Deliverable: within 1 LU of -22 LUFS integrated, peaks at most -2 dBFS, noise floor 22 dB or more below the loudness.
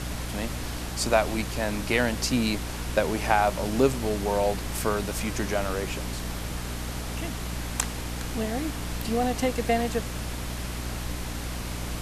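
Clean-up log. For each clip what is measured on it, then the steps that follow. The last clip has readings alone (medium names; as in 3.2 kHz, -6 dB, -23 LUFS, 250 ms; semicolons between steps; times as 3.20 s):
hum 60 Hz; highest harmonic 300 Hz; hum level -32 dBFS; noise floor -34 dBFS; noise floor target -50 dBFS; loudness -28.0 LUFS; peak level -5.5 dBFS; loudness target -22.0 LUFS
-> de-hum 60 Hz, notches 5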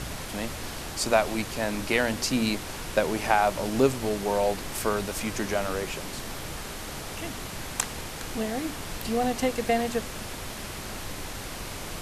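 hum not found; noise floor -37 dBFS; noise floor target -51 dBFS
-> noise print and reduce 14 dB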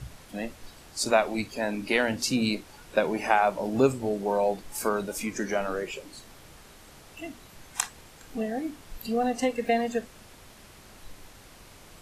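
noise floor -51 dBFS; loudness -28.0 LUFS; peak level -6.5 dBFS; loudness target -22.0 LUFS
-> trim +6 dB; peak limiter -2 dBFS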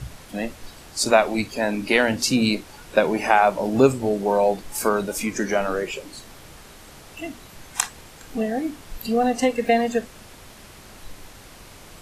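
loudness -22.0 LUFS; peak level -2.0 dBFS; noise floor -45 dBFS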